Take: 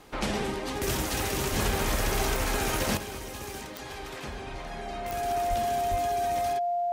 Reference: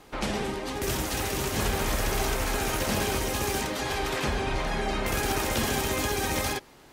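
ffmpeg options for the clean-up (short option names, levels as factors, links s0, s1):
-filter_complex "[0:a]adeclick=t=4,bandreject=f=700:w=30,asplit=3[s0][s1][s2];[s0]afade=t=out:st=1.5:d=0.02[s3];[s1]highpass=f=140:w=0.5412,highpass=f=140:w=1.3066,afade=t=in:st=1.5:d=0.02,afade=t=out:st=1.62:d=0.02[s4];[s2]afade=t=in:st=1.62:d=0.02[s5];[s3][s4][s5]amix=inputs=3:normalize=0,asplit=3[s6][s7][s8];[s6]afade=t=out:st=5.49:d=0.02[s9];[s7]highpass=f=140:w=0.5412,highpass=f=140:w=1.3066,afade=t=in:st=5.49:d=0.02,afade=t=out:st=5.61:d=0.02[s10];[s8]afade=t=in:st=5.61:d=0.02[s11];[s9][s10][s11]amix=inputs=3:normalize=0,asplit=3[s12][s13][s14];[s12]afade=t=out:st=5.9:d=0.02[s15];[s13]highpass=f=140:w=0.5412,highpass=f=140:w=1.3066,afade=t=in:st=5.9:d=0.02,afade=t=out:st=6.02:d=0.02[s16];[s14]afade=t=in:st=6.02:d=0.02[s17];[s15][s16][s17]amix=inputs=3:normalize=0,asetnsamples=n=441:p=0,asendcmd='2.97 volume volume 10dB',volume=1"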